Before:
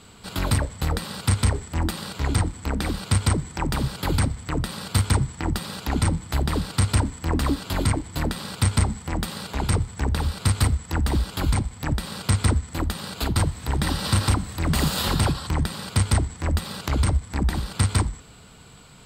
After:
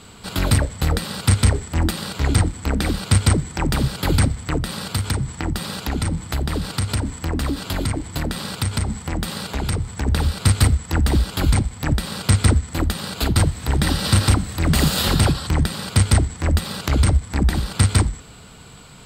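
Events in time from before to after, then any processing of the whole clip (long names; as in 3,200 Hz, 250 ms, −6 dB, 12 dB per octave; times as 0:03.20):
0:04.57–0:10.07: downward compressor 3 to 1, threshold −24 dBFS
whole clip: dynamic equaliser 990 Hz, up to −5 dB, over −42 dBFS, Q 2.6; level +5 dB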